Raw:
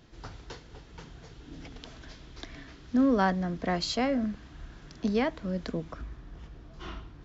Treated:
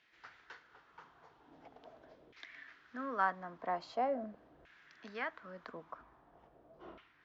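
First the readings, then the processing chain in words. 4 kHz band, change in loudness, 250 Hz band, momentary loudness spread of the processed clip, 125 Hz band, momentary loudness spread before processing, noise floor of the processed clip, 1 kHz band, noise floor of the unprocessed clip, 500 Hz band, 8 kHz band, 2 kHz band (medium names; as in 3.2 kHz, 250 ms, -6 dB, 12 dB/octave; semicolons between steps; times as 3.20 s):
-18.5 dB, -10.5 dB, -20.0 dB, 23 LU, -23.5 dB, 22 LU, -67 dBFS, -4.0 dB, -52 dBFS, -9.5 dB, no reading, -5.0 dB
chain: LFO band-pass saw down 0.43 Hz 510–2200 Hz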